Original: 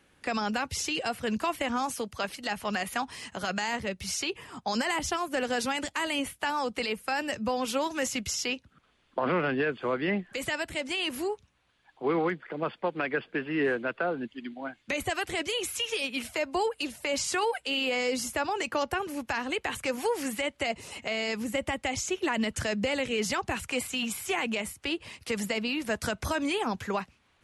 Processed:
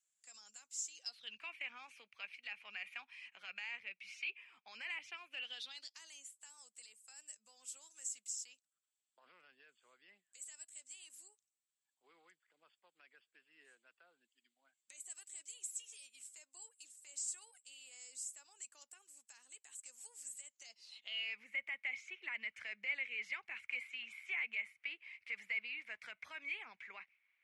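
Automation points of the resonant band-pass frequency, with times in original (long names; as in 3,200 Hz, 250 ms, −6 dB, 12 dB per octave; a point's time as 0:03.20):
resonant band-pass, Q 10
0:00.91 7,300 Hz
0:01.41 2,400 Hz
0:05.26 2,400 Hz
0:06.32 7,800 Hz
0:20.46 7,800 Hz
0:21.37 2,200 Hz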